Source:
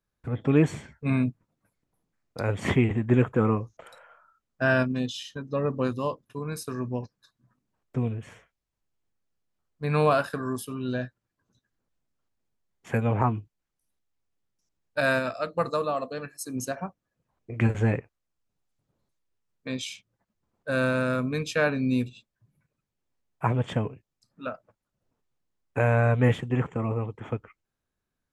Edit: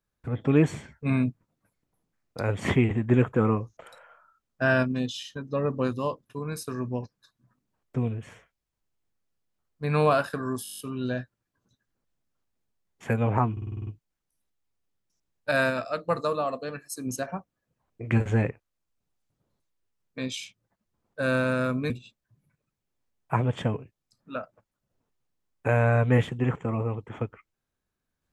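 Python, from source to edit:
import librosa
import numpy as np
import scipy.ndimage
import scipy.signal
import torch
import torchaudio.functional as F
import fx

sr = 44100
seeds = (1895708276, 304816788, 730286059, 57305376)

y = fx.edit(x, sr, fx.stutter(start_s=10.63, slice_s=0.02, count=9),
    fx.stutter(start_s=13.36, slice_s=0.05, count=8),
    fx.cut(start_s=21.39, length_s=0.62), tone=tone)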